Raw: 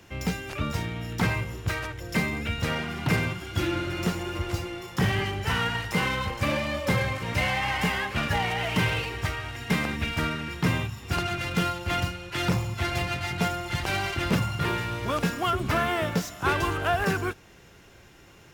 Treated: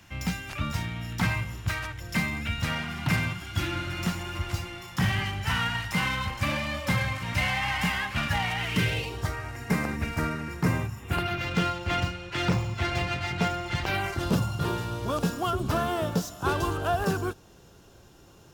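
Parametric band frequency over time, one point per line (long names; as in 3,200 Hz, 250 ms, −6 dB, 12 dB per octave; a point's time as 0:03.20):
parametric band −13.5 dB 0.74 octaves
0:08.53 430 Hz
0:09.37 3,300 Hz
0:10.89 3,300 Hz
0:11.53 12,000 Hz
0:13.82 12,000 Hz
0:14.23 2,100 Hz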